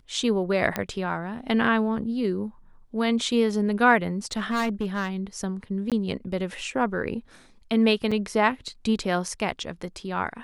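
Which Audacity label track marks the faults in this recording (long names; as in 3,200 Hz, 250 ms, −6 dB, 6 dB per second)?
0.760000	0.760000	click −11 dBFS
4.320000	5.090000	clipping −21.5 dBFS
5.900000	5.920000	drop-out 17 ms
8.110000	8.120000	drop-out 5.5 ms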